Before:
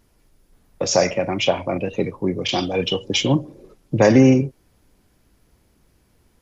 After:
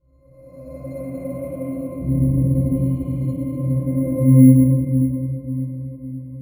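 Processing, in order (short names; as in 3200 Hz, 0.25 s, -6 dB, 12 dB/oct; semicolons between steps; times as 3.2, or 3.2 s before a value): time blur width 0.703 s; treble ducked by the level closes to 2000 Hz, closed at -20 dBFS; 2–2.73 tilt -4.5 dB/oct; in parallel at 0 dB: compressor, threshold -33 dBFS, peak gain reduction 16.5 dB; on the sum: vibrato 1.1 Hz 6.3 cents; octave resonator C, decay 0.32 s; on a send: diffused feedback echo 0.48 s, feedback 55%, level -12 dB; on the sum: shoebox room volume 820 m³, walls mixed, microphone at 4.9 m; careless resampling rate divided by 4×, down filtered, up hold; mismatched tape noise reduction decoder only; gain -1.5 dB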